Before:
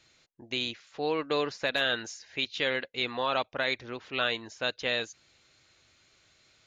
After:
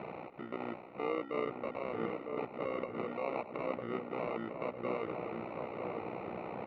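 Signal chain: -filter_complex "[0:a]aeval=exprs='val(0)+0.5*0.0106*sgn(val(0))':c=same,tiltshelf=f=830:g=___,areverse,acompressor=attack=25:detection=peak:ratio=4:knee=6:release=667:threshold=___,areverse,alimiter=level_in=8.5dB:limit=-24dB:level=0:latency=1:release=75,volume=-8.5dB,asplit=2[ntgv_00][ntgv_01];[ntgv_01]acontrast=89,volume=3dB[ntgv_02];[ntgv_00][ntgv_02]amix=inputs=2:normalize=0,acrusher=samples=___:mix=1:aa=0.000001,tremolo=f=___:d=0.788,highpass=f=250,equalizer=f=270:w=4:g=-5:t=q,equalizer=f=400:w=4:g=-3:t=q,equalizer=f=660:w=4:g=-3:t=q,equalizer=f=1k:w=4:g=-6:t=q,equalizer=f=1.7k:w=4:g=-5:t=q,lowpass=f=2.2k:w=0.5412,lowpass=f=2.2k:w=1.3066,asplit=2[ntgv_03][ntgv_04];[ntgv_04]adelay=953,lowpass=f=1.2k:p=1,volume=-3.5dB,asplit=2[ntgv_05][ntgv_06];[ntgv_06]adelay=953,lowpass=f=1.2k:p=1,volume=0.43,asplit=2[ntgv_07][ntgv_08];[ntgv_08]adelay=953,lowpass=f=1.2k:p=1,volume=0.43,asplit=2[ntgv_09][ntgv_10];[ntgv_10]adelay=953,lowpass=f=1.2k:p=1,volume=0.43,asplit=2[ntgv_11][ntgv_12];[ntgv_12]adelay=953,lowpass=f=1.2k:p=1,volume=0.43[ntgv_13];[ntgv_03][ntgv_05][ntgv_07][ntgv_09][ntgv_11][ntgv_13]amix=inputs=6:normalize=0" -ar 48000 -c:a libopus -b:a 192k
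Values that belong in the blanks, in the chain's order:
4, -40dB, 27, 61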